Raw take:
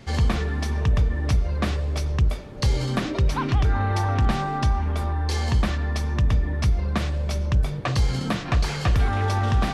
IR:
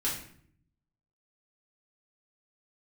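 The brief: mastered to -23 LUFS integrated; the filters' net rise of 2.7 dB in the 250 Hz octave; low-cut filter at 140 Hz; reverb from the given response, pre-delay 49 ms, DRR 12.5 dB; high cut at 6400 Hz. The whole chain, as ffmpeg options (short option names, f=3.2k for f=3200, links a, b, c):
-filter_complex "[0:a]highpass=140,lowpass=6.4k,equalizer=f=250:t=o:g=4.5,asplit=2[a][b];[1:a]atrim=start_sample=2205,adelay=49[c];[b][c]afir=irnorm=-1:irlink=0,volume=-18.5dB[d];[a][d]amix=inputs=2:normalize=0,volume=4.5dB"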